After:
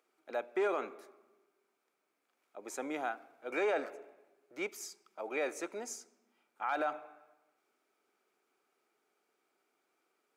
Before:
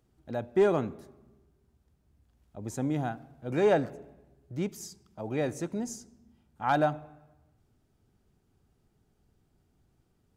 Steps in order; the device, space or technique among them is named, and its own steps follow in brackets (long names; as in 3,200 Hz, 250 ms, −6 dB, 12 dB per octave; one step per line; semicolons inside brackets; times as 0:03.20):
laptop speaker (high-pass filter 370 Hz 24 dB per octave; parametric band 1,300 Hz +8 dB 0.46 octaves; parametric band 2,300 Hz +11 dB 0.28 octaves; brickwall limiter −22.5 dBFS, peak gain reduction 11.5 dB)
level −2 dB